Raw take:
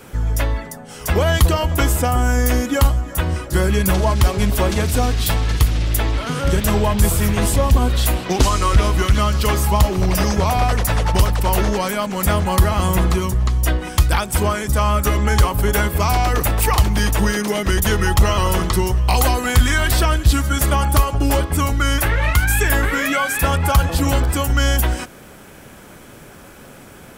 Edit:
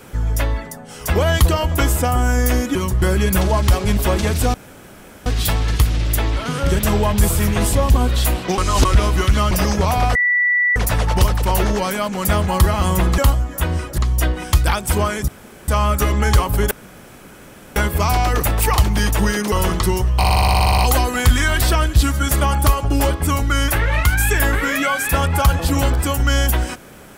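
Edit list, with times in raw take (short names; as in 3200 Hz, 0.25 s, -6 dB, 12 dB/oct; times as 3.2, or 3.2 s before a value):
2.75–3.55 swap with 13.16–13.43
5.07 insert room tone 0.72 s
8.39–8.66 reverse
9.32–10.1 cut
10.74 add tone 1960 Hz -13 dBFS 0.61 s
14.73 insert room tone 0.40 s
15.76 insert room tone 1.05 s
17.52–18.42 cut
19.08 stutter 0.06 s, 11 plays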